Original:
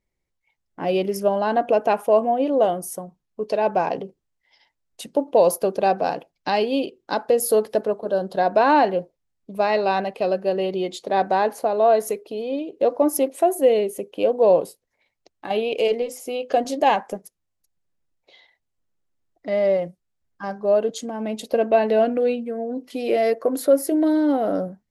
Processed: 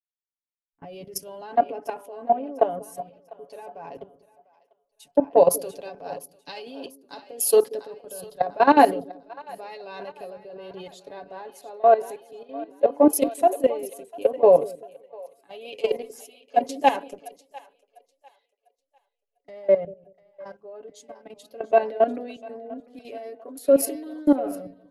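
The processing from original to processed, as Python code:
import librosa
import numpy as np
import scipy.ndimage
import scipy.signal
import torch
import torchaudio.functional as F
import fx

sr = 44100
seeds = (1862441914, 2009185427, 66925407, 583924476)

y = x + 0.71 * np.pad(x, (int(7.1 * sr / 1000.0), 0))[:len(x)]
y = fx.level_steps(y, sr, step_db=14)
y = fx.echo_split(y, sr, split_hz=480.0, low_ms=189, high_ms=698, feedback_pct=52, wet_db=-11)
y = fx.band_widen(y, sr, depth_pct=100)
y = F.gain(torch.from_numpy(y), -4.5).numpy()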